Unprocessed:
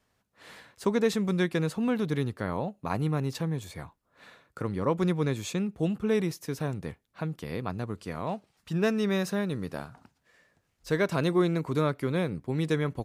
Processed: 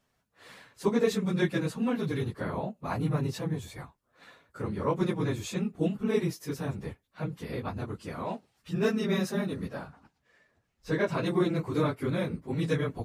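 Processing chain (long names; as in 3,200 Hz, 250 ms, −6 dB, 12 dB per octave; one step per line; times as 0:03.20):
random phases in long frames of 50 ms
0:09.68–0:11.26: high-shelf EQ 6,600 Hz −9.5 dB
level −1.5 dB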